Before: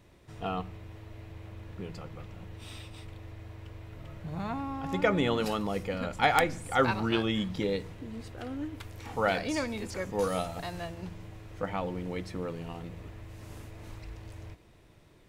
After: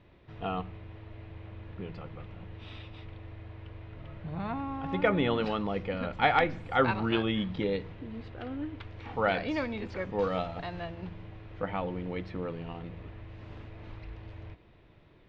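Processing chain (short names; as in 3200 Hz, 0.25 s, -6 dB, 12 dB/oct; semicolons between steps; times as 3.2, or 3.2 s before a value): LPF 3700 Hz 24 dB/oct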